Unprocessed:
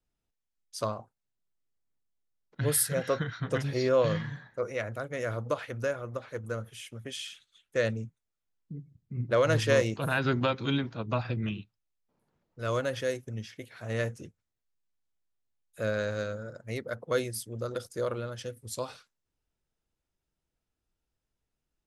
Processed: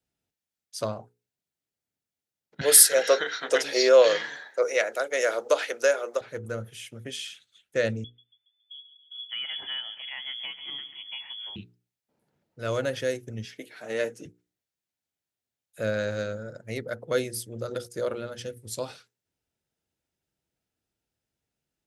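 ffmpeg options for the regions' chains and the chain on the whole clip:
-filter_complex "[0:a]asettb=1/sr,asplit=3[a][b][c];[a]atrim=end=2.614[d];[b]atrim=start=2.61:end=6.21,asetpts=PTS-STARTPTS,afade=t=in:d=0.004:c=qsin,afade=t=out:st=3.596:d=0.004:c=qsin,highpass=f=400:w=0.5412,highpass=f=400:w=1.3066,equalizer=f=6k:w=0.84:g=7,acontrast=66[e];[c]atrim=start=6.206[f];[d][e]acrossfade=d=0.004:c1=hsin:c2=qsin[g];[g][f]acrossfade=d=0.004:c1=qsin:c2=hsin,asettb=1/sr,asplit=3[h][i][j];[h]atrim=end=8.044[k];[i]atrim=start=8.04:end=11.56,asetpts=PTS-STARTPTS,afade=t=in:d=0.004:c=qsin,afade=t=out:st=3.516:d=0.004:c=qsin,aecho=1:1:139|278|417|556|695:0.133|0.0707|0.0375|0.0199|0.0105,atrim=end_sample=155232,acompressor=threshold=-58dB:ratio=1.5:attack=3.2:release=140:knee=1:detection=peak,lowpass=f=3k:t=q:w=0.5098,lowpass=f=3k:t=q:w=0.6013,lowpass=f=3k:t=q:w=0.9,lowpass=f=3k:t=q:w=2.563,afreqshift=-3500[l];[j]atrim=start=11.556[m];[k][l]acrossfade=d=0.004:c1=hsin:c2=qsin[n];[n][m]acrossfade=d=0.004:c1=qsin:c2=hsin,asettb=1/sr,asplit=3[o][p][q];[o]atrim=end=13.454[r];[p]atrim=start=13.45:end=14.25,asetpts=PTS-STARTPTS,afade=t=in:d=0.004:c=qsin,afade=t=out:st=0.796:d=0.004:c=qsin,highpass=f=200:w=0.5412,highpass=f=200:w=1.3066,aecho=1:1:6.6:0.39,atrim=end_sample=35280[s];[q]atrim=start=14.246[t];[r][s]acrossfade=d=0.004:c1=hsin:c2=qsin[u];[u][t]acrossfade=d=0.004:c1=qsin:c2=hsin,highpass=87,equalizer=f=1.1k:t=o:w=0.38:g=-7.5,bandreject=f=60:t=h:w=6,bandreject=f=120:t=h:w=6,bandreject=f=180:t=h:w=6,bandreject=f=240:t=h:w=6,bandreject=f=300:t=h:w=6,bandreject=f=360:t=h:w=6,bandreject=f=420:t=h:w=6,bandreject=f=480:t=h:w=6,volume=3dB"

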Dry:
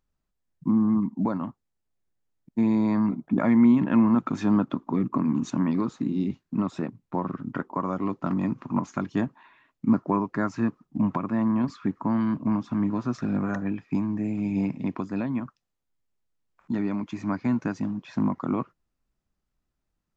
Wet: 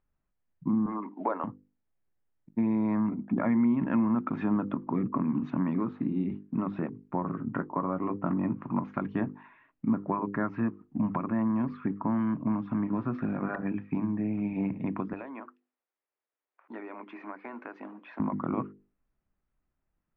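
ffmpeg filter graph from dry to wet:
-filter_complex "[0:a]asettb=1/sr,asplit=3[a][b][c];[a]atrim=end=0.864[d];[b]atrim=start=0.86:end=1.44,asetpts=PTS-STARTPTS,afade=t=in:d=0.004:c=qsin,afade=t=out:st=0.576:d=0.004:c=qsin,highpass=f=400:w=0.5412,highpass=f=400:w=1.3066,acontrast=47[e];[c]atrim=start=1.436[f];[d][e]acrossfade=d=0.004:c1=hsin:c2=qsin[g];[g][f]acrossfade=d=0.004:c1=qsin:c2=hsin,asettb=1/sr,asplit=3[h][i][j];[h]atrim=end=7.224[k];[i]atrim=start=7.22:end=8.63,asetpts=PTS-STARTPTS,afade=t=in:d=0.004:c=qsin,afade=t=out:st=1.406:d=0.004:c=qsin,aemphasis=mode=reproduction:type=75fm,asplit=2[l][m];[m]adelay=18,volume=-12dB[n];[l][n]amix=inputs=2:normalize=0,atrim=end_sample=62181[o];[j]atrim=start=8.626[p];[k][o]acrossfade=d=0.004:c1=hsin:c2=qsin[q];[q][p]acrossfade=d=0.004:c1=qsin:c2=hsin,asettb=1/sr,asplit=3[r][s][t];[r]atrim=end=15.134[u];[s]atrim=start=15.13:end=18.2,asetpts=PTS-STARTPTS,afade=t=in:d=0.004:c=qsin,afade=t=out:st=3.066:d=0.004:c=qsin,highpass=f=370:w=0.5412,highpass=f=370:w=1.3066,acompressor=threshold=-36dB:ratio=4:attack=3.2:release=140:knee=1:detection=peak[v];[t]atrim=start=18.196[w];[u][v]acrossfade=d=0.004:c1=hsin:c2=qsin[x];[x][w]acrossfade=d=0.004:c1=qsin:c2=hsin,lowpass=f=2.5k:w=0.5412,lowpass=f=2.5k:w=1.3066,bandreject=f=50:t=h:w=6,bandreject=f=100:t=h:w=6,bandreject=f=150:t=h:w=6,bandreject=f=200:t=h:w=6,bandreject=f=250:t=h:w=6,bandreject=f=300:t=h:w=6,bandreject=f=350:t=h:w=6,bandreject=f=400:t=h:w=6,bandreject=f=450:t=h:w=6,bandreject=f=500:t=h:w=6,acompressor=threshold=-27dB:ratio=2"

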